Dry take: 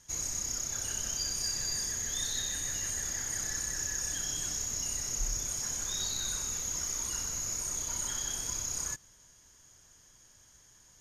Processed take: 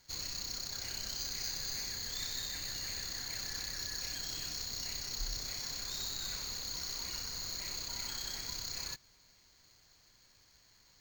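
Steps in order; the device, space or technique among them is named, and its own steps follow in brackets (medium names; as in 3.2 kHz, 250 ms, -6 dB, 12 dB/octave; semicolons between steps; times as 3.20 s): early companding sampler (sample-rate reducer 11 kHz, jitter 0%; companded quantiser 6-bit); trim -5.5 dB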